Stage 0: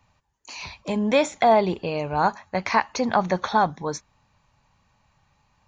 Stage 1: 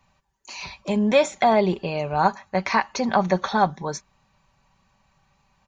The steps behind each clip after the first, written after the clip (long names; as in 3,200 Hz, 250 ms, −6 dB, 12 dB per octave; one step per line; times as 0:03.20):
comb filter 5.2 ms, depth 46%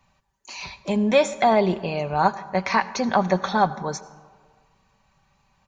convolution reverb RT60 1.7 s, pre-delay 73 ms, DRR 16.5 dB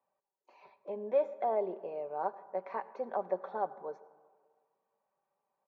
four-pole ladder band-pass 560 Hz, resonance 45%
level −3 dB